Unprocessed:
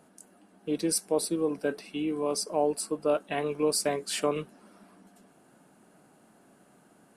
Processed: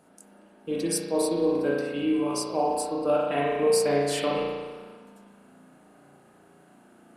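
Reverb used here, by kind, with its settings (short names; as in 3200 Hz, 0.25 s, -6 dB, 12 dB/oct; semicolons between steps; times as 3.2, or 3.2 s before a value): spring tank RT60 1.4 s, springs 35 ms, chirp 25 ms, DRR -4 dB; gain -1 dB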